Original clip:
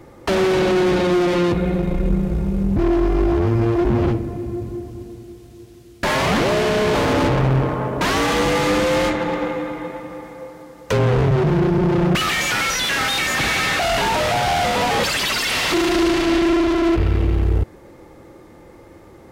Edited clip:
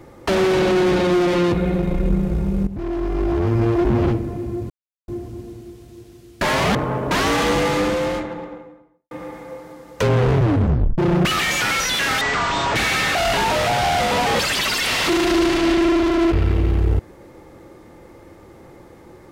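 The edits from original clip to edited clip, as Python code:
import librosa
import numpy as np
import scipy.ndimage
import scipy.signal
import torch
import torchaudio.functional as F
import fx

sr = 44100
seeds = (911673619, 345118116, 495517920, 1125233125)

y = fx.studio_fade_out(x, sr, start_s=8.29, length_s=1.72)
y = fx.edit(y, sr, fx.fade_in_from(start_s=2.67, length_s=0.96, floor_db=-13.0),
    fx.insert_silence(at_s=4.7, length_s=0.38),
    fx.cut(start_s=6.37, length_s=1.28),
    fx.tape_stop(start_s=11.29, length_s=0.59),
    fx.speed_span(start_s=13.11, length_s=0.29, speed=0.53), tone=tone)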